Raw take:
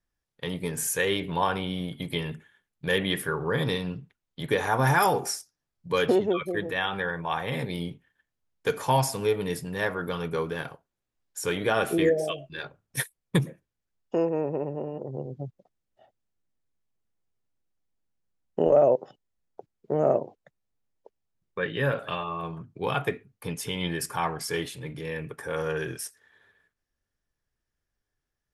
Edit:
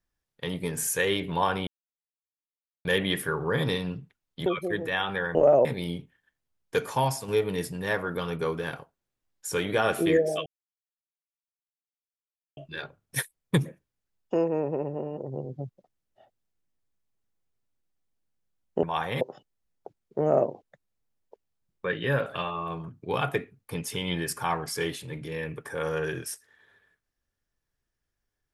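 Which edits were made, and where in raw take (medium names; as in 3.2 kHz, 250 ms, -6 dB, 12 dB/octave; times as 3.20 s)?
1.67–2.85 s: mute
4.46–6.30 s: delete
7.19–7.57 s: swap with 18.64–18.94 s
8.69–9.20 s: fade out, to -6.5 dB
12.38 s: insert silence 2.11 s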